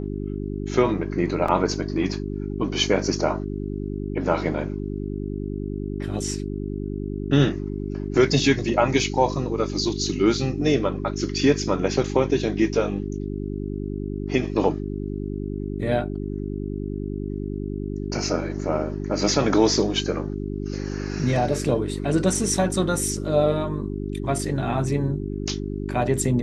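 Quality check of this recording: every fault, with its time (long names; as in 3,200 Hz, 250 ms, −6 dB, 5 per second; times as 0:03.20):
mains hum 50 Hz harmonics 8 −29 dBFS
0:01.48: drop-out 4.2 ms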